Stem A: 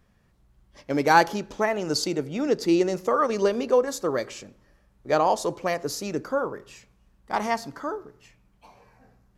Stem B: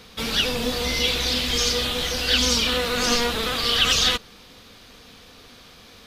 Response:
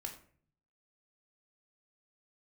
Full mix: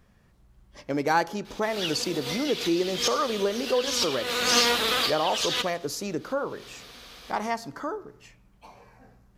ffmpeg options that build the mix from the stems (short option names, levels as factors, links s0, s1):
-filter_complex "[0:a]acompressor=threshold=0.0126:ratio=1.5,volume=1.41,asplit=2[s0][s1];[1:a]highpass=f=400:p=1,adelay=1450,volume=1.19,asplit=2[s2][s3];[s3]volume=0.0841[s4];[s1]apad=whole_len=331444[s5];[s2][s5]sidechaincompress=threshold=0.00891:ratio=10:attack=48:release=131[s6];[s4]aecho=0:1:83|166|249|332|415|498:1|0.42|0.176|0.0741|0.0311|0.0131[s7];[s0][s6][s7]amix=inputs=3:normalize=0"